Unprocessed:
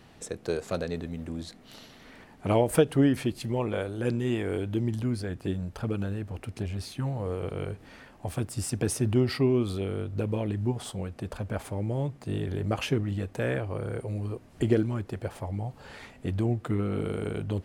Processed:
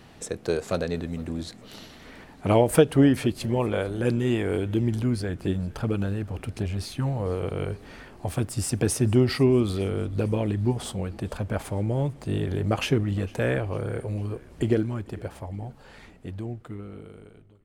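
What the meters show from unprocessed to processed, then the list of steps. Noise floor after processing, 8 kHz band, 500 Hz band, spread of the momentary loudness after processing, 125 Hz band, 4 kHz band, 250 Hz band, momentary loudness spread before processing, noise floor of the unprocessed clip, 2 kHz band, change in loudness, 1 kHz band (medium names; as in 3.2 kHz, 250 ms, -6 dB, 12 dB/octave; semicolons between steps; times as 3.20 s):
-50 dBFS, +4.0 dB, +3.5 dB, 16 LU, +3.0 dB, +4.0 dB, +3.5 dB, 12 LU, -53 dBFS, +3.5 dB, +3.5 dB, +3.5 dB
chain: fade out at the end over 4.20 s; frequency-shifting echo 452 ms, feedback 60%, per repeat -49 Hz, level -23 dB; trim +4 dB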